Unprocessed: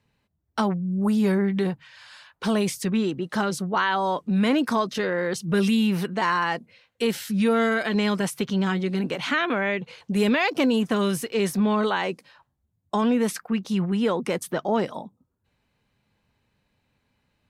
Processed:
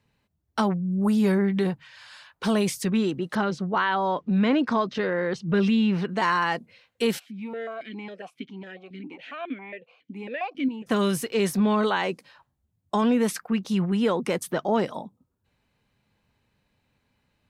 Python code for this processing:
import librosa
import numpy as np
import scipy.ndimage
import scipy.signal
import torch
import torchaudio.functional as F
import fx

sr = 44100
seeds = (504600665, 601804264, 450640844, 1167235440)

y = fx.air_absorb(x, sr, metres=160.0, at=(3.35, 6.09))
y = fx.vowel_held(y, sr, hz=7.3, at=(7.18, 10.86), fade=0.02)